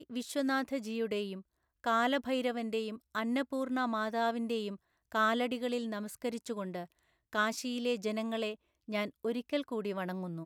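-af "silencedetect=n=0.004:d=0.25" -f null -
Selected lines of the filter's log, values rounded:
silence_start: 1.41
silence_end: 1.84 | silence_duration: 0.43
silence_start: 4.76
silence_end: 5.12 | silence_duration: 0.36
silence_start: 6.85
silence_end: 7.33 | silence_duration: 0.48
silence_start: 8.55
silence_end: 8.88 | silence_duration: 0.33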